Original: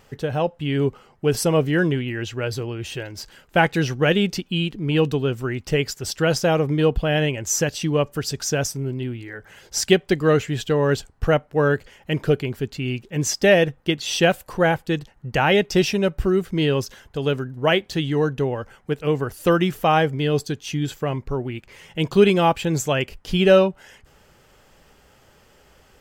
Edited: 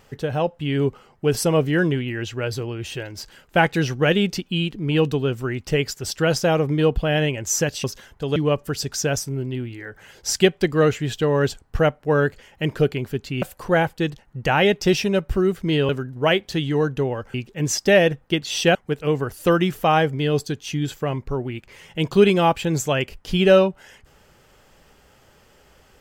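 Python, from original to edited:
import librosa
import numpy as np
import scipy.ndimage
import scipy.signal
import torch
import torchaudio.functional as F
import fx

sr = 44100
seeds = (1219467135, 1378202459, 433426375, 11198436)

y = fx.edit(x, sr, fx.move(start_s=12.9, length_s=1.41, to_s=18.75),
    fx.move(start_s=16.78, length_s=0.52, to_s=7.84), tone=tone)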